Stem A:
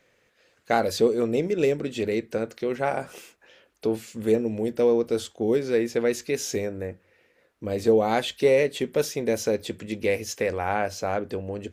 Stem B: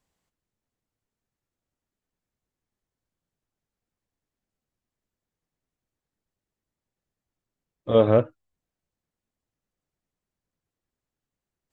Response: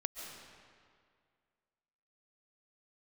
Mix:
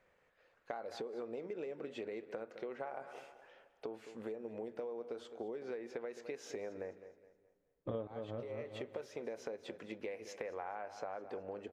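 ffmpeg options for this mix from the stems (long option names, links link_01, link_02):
-filter_complex "[0:a]acompressor=threshold=-25dB:ratio=6,bandpass=frequency=900:width_type=q:width=1:csg=0,volume=-4dB,asplit=3[link_01][link_02][link_03];[link_01]atrim=end=7.07,asetpts=PTS-STARTPTS,afade=type=out:start_time=7.066:duration=0.004:curve=hsin[link_04];[link_02]atrim=start=7.07:end=8.07,asetpts=PTS-STARTPTS,volume=0[link_05];[link_03]atrim=start=8.07,asetpts=PTS-STARTPTS,afade=type=in:duration=0.004:curve=hsin[link_06];[link_04][link_05][link_06]concat=n=3:v=0:a=1,asplit=4[link_07][link_08][link_09][link_10];[link_08]volume=-19.5dB[link_11];[link_09]volume=-15.5dB[link_12];[1:a]highshelf=frequency=2400:gain=-12,volume=0dB,asplit=2[link_13][link_14];[link_14]volume=-11dB[link_15];[link_10]apad=whole_len=516995[link_16];[link_13][link_16]sidechaincompress=threshold=-59dB:ratio=8:attack=16:release=116[link_17];[2:a]atrim=start_sample=2205[link_18];[link_11][link_18]afir=irnorm=-1:irlink=0[link_19];[link_12][link_15]amix=inputs=2:normalize=0,aecho=0:1:211|422|633|844|1055:1|0.36|0.13|0.0467|0.0168[link_20];[link_07][link_17][link_19][link_20]amix=inputs=4:normalize=0,acompressor=threshold=-39dB:ratio=8"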